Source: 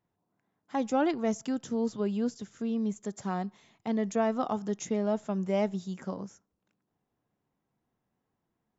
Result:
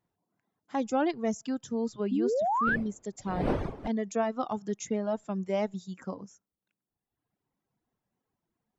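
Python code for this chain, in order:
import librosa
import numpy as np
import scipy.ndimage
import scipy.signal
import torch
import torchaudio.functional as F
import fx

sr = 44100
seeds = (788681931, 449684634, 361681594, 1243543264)

y = fx.dmg_wind(x, sr, seeds[0], corner_hz=470.0, level_db=-31.0, at=(2.66, 3.87), fade=0.02)
y = fx.spec_paint(y, sr, seeds[1], shape='rise', start_s=2.11, length_s=0.65, low_hz=240.0, high_hz=1800.0, level_db=-27.0)
y = fx.dereverb_blind(y, sr, rt60_s=1.3)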